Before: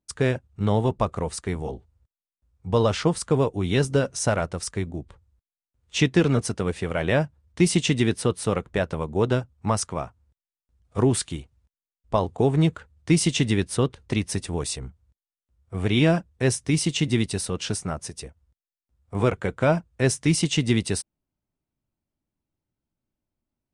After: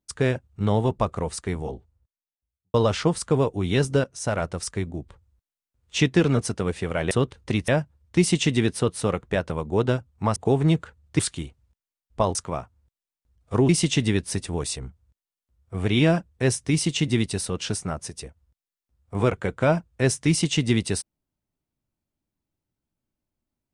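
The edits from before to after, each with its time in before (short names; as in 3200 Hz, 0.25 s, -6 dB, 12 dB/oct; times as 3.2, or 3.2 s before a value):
1.53–2.74 studio fade out
4.04–4.45 fade in linear, from -15.5 dB
9.79–11.13 swap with 12.29–13.12
13.73–14.3 move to 7.11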